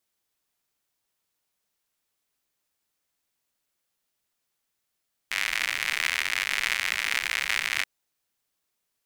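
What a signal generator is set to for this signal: rain from filtered ticks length 2.53 s, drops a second 110, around 2.1 kHz, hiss -24.5 dB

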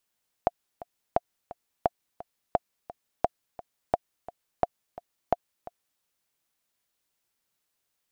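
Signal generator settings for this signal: metronome 173 bpm, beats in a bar 2, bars 8, 701 Hz, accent 18 dB -8 dBFS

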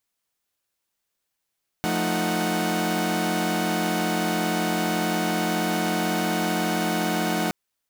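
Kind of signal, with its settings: chord F3/A3/D#4/F#5 saw, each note -25.5 dBFS 5.67 s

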